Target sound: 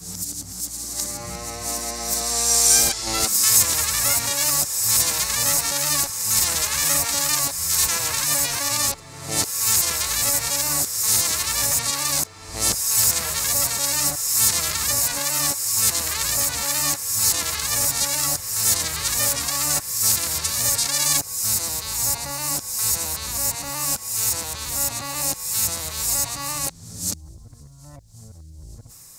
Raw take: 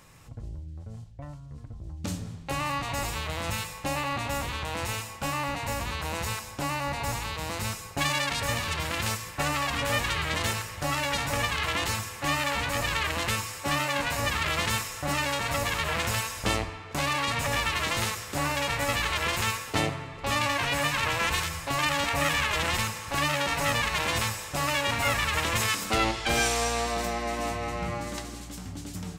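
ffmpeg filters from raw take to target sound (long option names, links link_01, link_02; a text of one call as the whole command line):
ffmpeg -i in.wav -af "areverse,aexciter=amount=12:drive=1:freq=4400,volume=-2.5dB" out.wav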